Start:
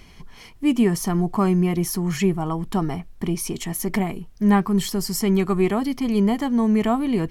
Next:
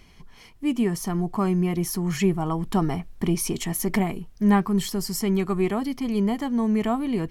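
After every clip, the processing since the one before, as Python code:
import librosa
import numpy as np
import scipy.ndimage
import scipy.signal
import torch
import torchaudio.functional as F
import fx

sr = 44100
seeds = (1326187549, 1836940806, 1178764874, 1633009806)

y = fx.rider(x, sr, range_db=10, speed_s=2.0)
y = y * 10.0 ** (-3.0 / 20.0)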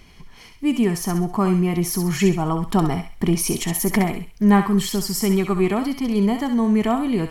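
y = fx.echo_thinned(x, sr, ms=66, feedback_pct=41, hz=1100.0, wet_db=-5.5)
y = y * 10.0 ** (4.0 / 20.0)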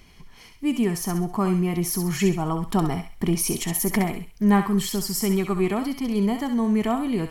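y = fx.high_shelf(x, sr, hz=9100.0, db=4.5)
y = y * 10.0 ** (-3.5 / 20.0)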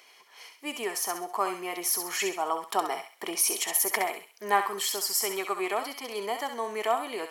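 y = scipy.signal.sosfilt(scipy.signal.butter(4, 480.0, 'highpass', fs=sr, output='sos'), x)
y = y * 10.0 ** (1.0 / 20.0)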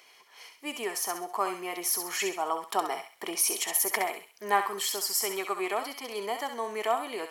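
y = fx.dmg_crackle(x, sr, seeds[0], per_s=39.0, level_db=-51.0)
y = y * 10.0 ** (-1.0 / 20.0)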